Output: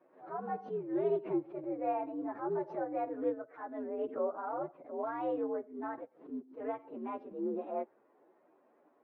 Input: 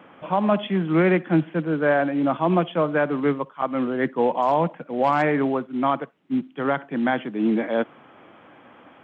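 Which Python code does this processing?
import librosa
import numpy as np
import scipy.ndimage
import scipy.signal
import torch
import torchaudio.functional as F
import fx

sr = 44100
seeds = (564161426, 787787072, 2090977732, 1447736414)

y = fx.partial_stretch(x, sr, pct=123)
y = fx.ladder_bandpass(y, sr, hz=520.0, resonance_pct=35)
y = fx.air_absorb(y, sr, metres=180.0)
y = fx.pre_swell(y, sr, db_per_s=150.0)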